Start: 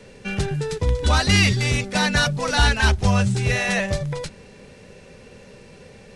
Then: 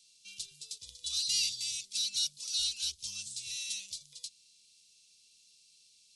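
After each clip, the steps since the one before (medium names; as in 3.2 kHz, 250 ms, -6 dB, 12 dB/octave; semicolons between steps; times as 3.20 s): inverse Chebyshev high-pass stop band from 1.9 kHz, stop band 40 dB; trim -4 dB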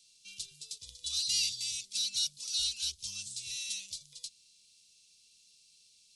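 bass shelf 170 Hz +4 dB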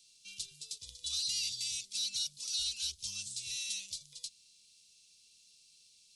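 peak limiter -25.5 dBFS, peak gain reduction 6.5 dB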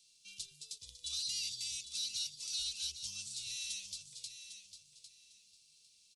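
feedback delay 802 ms, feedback 22%, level -10 dB; trim -3.5 dB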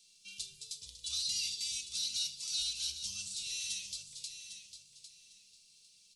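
simulated room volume 1000 m³, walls furnished, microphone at 1.4 m; trim +2 dB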